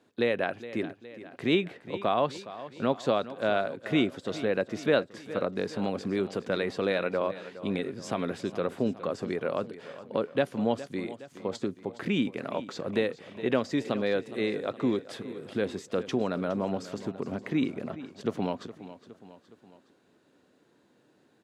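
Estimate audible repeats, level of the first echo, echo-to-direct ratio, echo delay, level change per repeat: 3, -15.0 dB, -13.5 dB, 415 ms, -5.0 dB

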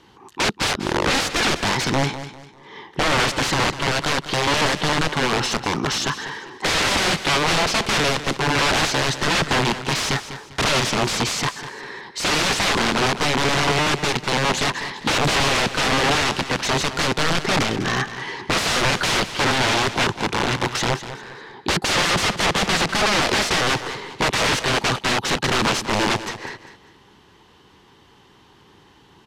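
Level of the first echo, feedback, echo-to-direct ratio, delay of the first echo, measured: -12.5 dB, 32%, -12.0 dB, 199 ms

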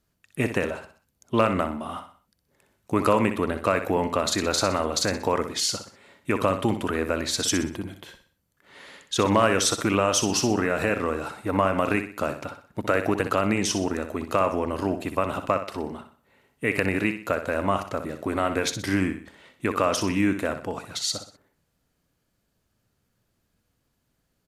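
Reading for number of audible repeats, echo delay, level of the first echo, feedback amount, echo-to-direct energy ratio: 4, 62 ms, -9.5 dB, 39%, -9.0 dB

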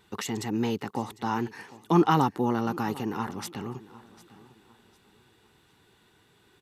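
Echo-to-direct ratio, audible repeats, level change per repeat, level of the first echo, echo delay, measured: -19.0 dB, 2, -10.0 dB, -19.5 dB, 751 ms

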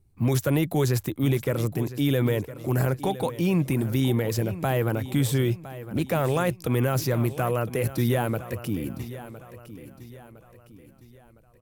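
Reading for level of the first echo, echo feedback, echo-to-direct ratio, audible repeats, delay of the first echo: -14.5 dB, 42%, -13.5 dB, 3, 1010 ms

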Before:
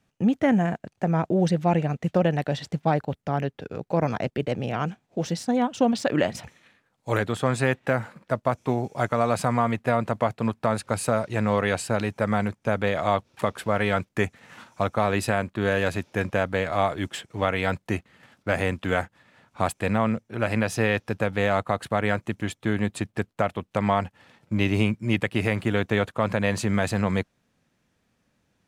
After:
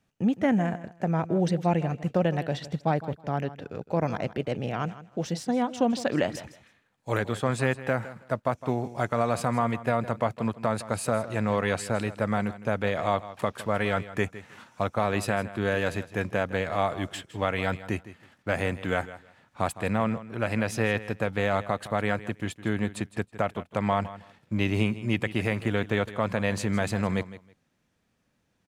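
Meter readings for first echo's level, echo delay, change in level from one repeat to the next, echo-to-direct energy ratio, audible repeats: -15.5 dB, 160 ms, -14.5 dB, -15.5 dB, 2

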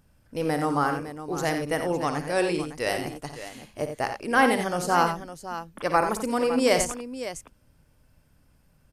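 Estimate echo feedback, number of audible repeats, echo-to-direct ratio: no regular repeats, 3, -5.0 dB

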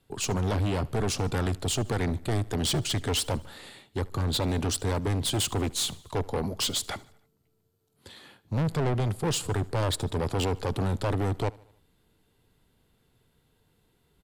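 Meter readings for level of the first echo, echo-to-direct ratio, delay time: -23.0 dB, -21.5 dB, 75 ms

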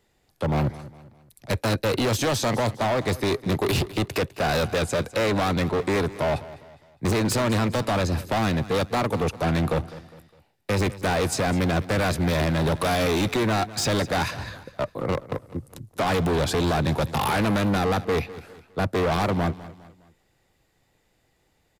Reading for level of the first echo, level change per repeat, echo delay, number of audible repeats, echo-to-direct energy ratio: -17.0 dB, -7.5 dB, 204 ms, 3, -16.0 dB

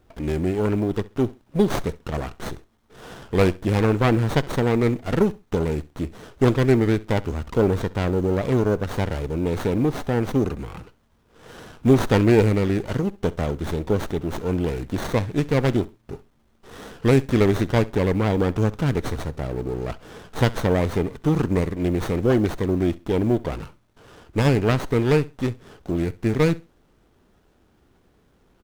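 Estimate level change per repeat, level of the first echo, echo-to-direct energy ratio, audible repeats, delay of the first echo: -13.5 dB, -20.5 dB, -20.5 dB, 2, 66 ms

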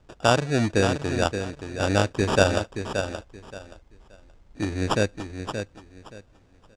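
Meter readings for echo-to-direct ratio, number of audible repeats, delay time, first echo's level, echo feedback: -8.0 dB, 3, 575 ms, -8.0 dB, 22%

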